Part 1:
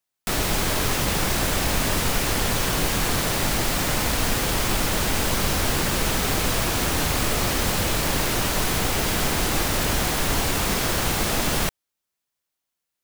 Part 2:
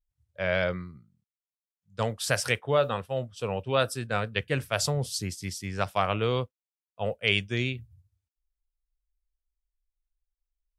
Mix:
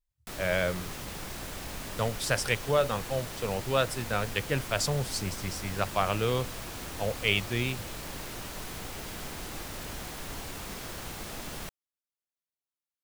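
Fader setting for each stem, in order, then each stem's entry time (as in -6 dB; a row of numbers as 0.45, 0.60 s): -16.5, -1.5 dB; 0.00, 0.00 s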